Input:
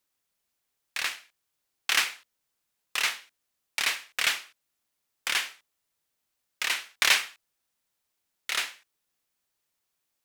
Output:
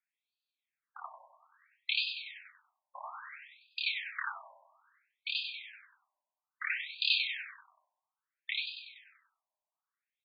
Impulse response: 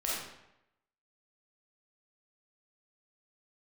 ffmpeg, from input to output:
-filter_complex "[0:a]bandreject=f=2.9k:w=8.2,aecho=1:1:96|192|288|384|480|576|672:0.422|0.236|0.132|0.0741|0.0415|0.0232|0.013,asplit=2[a][b];[1:a]atrim=start_sample=2205,lowshelf=f=410:g=11.5[c];[b][c]afir=irnorm=-1:irlink=0,volume=-15.5dB[d];[a][d]amix=inputs=2:normalize=0,afftfilt=real='re*between(b*sr/1024,760*pow(3500/760,0.5+0.5*sin(2*PI*0.6*pts/sr))/1.41,760*pow(3500/760,0.5+0.5*sin(2*PI*0.6*pts/sr))*1.41)':imag='im*between(b*sr/1024,760*pow(3500/760,0.5+0.5*sin(2*PI*0.6*pts/sr))/1.41,760*pow(3500/760,0.5+0.5*sin(2*PI*0.6*pts/sr))*1.41)':win_size=1024:overlap=0.75,volume=-4dB"

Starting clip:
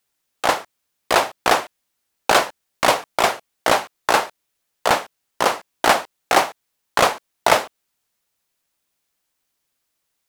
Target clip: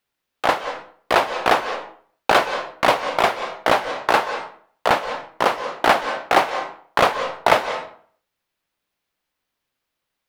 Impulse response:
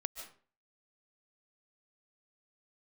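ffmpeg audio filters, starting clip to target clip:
-filter_complex "[0:a]asplit=2[a][b];[1:a]atrim=start_sample=2205,asetrate=35721,aresample=44100,lowpass=4.5k[c];[b][c]afir=irnorm=-1:irlink=0,volume=4.5dB[d];[a][d]amix=inputs=2:normalize=0,volume=-8dB"

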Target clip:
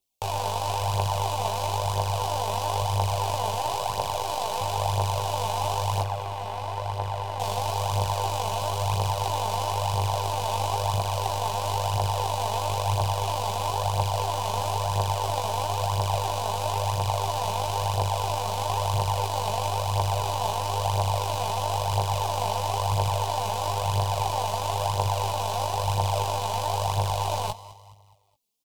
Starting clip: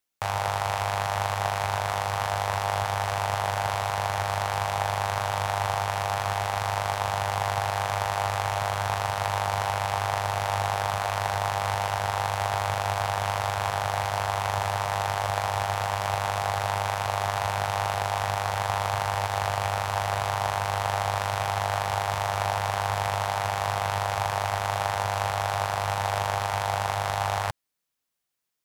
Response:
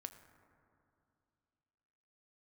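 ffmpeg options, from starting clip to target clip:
-filter_complex "[0:a]asettb=1/sr,asplit=3[a][b][c];[a]atrim=end=6.014[d];[b]atrim=start=6.01:end=7.4,asetpts=PTS-STARTPTS,afade=t=in:d=0.004:c=qsin,afade=t=out:st=1.386:d=0.004:c=qsin,acrossover=split=990|3200[e][f][g];[e]acompressor=threshold=-30dB:ratio=4[h];[f]acompressor=threshold=-33dB:ratio=4[i];[g]acompressor=threshold=-50dB:ratio=4[j];[h][i][j]amix=inputs=3:normalize=0[k];[c]atrim=start=7.396[l];[d][k]acrossfade=d=0.004:c1=hsin:c2=qsin[m];[m][l]acrossfade=d=0.004:c1=qsin:c2=hsin,asuperstop=centerf=1600:order=4:qfactor=0.95,asplit=2[n][o];[o]adelay=18,volume=-4.5dB[p];[n][p]amix=inputs=2:normalize=0,aecho=1:1:209|418|627|836:0.141|0.0593|0.0249|0.0105,aeval=exprs='0.251*(cos(1*acos(clip(val(0)/0.251,-1,1)))-cos(1*PI/2))+0.00708*(cos(6*acos(clip(val(0)/0.251,-1,1)))-cos(6*PI/2))+0.0141*(cos(8*acos(clip(val(0)/0.251,-1,1)))-cos(8*PI/2))':c=same,aphaser=in_gain=1:out_gain=1:delay=4.9:decay=0.49:speed=1:type=triangular,asettb=1/sr,asplit=3[q][r][s];[q]atrim=end=3.564[t];[r]atrim=start=3.56:end=4.61,asetpts=PTS-STARTPTS,afade=t=in:d=0.004:c=qsin,afade=t=out:st=1.046:d=0.004:c=qsin,bandreject=f=50:t=h:w=6,bandreject=f=100:t=h:w=6,bandreject=f=150:t=h:w=6,bandreject=f=200:t=h:w=6[u];[s]atrim=start=4.606[v];[t][u]acrossfade=d=0.004:c1=hsin:c2=qsin[w];[w][v]acrossfade=d=0.004:c1=qsin:c2=hsin"

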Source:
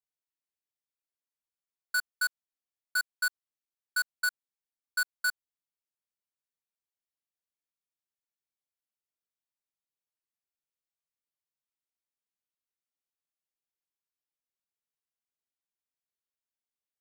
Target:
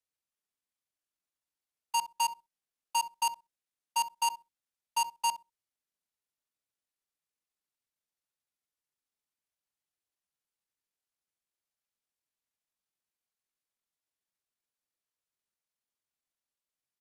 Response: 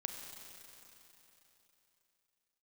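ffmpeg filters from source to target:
-filter_complex "[0:a]asplit=2[a][b];[b]adelay=64,lowpass=f=930:p=1,volume=-8.5dB,asplit=2[c][d];[d]adelay=64,lowpass=f=930:p=1,volume=0.2,asplit=2[e][f];[f]adelay=64,lowpass=f=930:p=1,volume=0.2[g];[a][c][e][g]amix=inputs=4:normalize=0,acrossover=split=640|1100[h][i][j];[j]acrusher=bits=2:mode=log:mix=0:aa=0.000001[k];[h][i][k]amix=inputs=3:normalize=0,asetrate=27781,aresample=44100,atempo=1.5874"

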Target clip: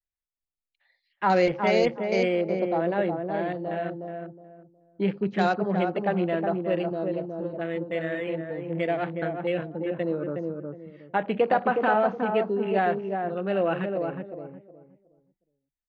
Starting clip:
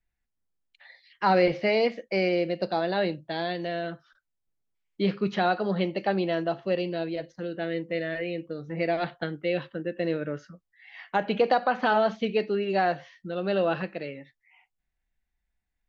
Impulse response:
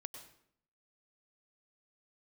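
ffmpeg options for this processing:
-filter_complex "[0:a]asettb=1/sr,asplit=3[a][b][c];[a]atrim=end=2.494[d];[b]atrim=start=2.49:end=3.78,asetpts=PTS-STARTPTS,afade=t=in:d=0.004:c=qsin,afade=t=out:st=1.286:d=0.004:c=qsin,lowpass=f=2.7k:p=1[e];[c]atrim=start=3.776[f];[d][e]acrossfade=d=0.004:c1=hsin:c2=qsin[g];[g][f]acrossfade=d=0.004:c1=qsin:c2=hsin,afwtdn=0.0126,asplit=2[h][i];[i]adelay=365,lowpass=f=880:p=1,volume=-3dB,asplit=2[j][k];[k]adelay=365,lowpass=f=880:p=1,volume=0.27,asplit=2[l][m];[m]adelay=365,lowpass=f=880:p=1,volume=0.27,asplit=2[n][o];[o]adelay=365,lowpass=f=880:p=1,volume=0.27[p];[j][l][n][p]amix=inputs=4:normalize=0[q];[h][q]amix=inputs=2:normalize=0"

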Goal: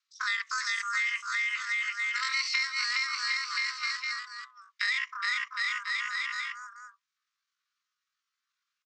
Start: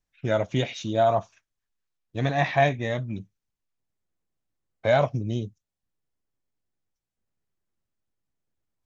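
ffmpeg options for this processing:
-filter_complex "[0:a]asplit=2[a][b];[b]aecho=0:1:400|740|1029|1275|1483:0.631|0.398|0.251|0.158|0.1[c];[a][c]amix=inputs=2:normalize=0,highpass=f=190:t=q:w=0.5412,highpass=f=190:t=q:w=1.307,lowpass=f=3k:t=q:w=0.5176,lowpass=f=3k:t=q:w=0.7071,lowpass=f=3k:t=q:w=1.932,afreqshift=400,asetrate=85689,aresample=44100,atempo=0.514651,acompressor=threshold=-34dB:ratio=6,highshelf=f=2.3k:g=10.5,volume=1dB"

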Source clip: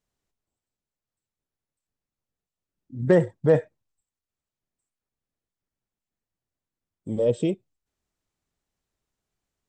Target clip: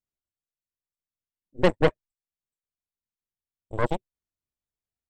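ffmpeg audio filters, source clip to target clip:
-af "atempo=1.9,aeval=exprs='0.422*(cos(1*acos(clip(val(0)/0.422,-1,1)))-cos(1*PI/2))+0.0299*(cos(3*acos(clip(val(0)/0.422,-1,1)))-cos(3*PI/2))+0.0596*(cos(7*acos(clip(val(0)/0.422,-1,1)))-cos(7*PI/2))+0.0531*(cos(8*acos(clip(val(0)/0.422,-1,1)))-cos(8*PI/2))':c=same,equalizer=f=75:t=o:w=0.99:g=4"

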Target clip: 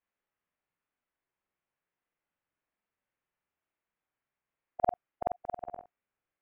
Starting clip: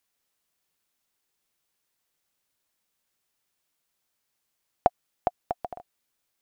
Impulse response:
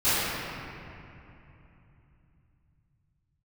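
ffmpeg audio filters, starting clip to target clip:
-af "afftfilt=real='re':imag='-im':win_size=4096:overlap=0.75,lowpass=f=2.4k:w=0.5412,lowpass=f=2.4k:w=1.3066"

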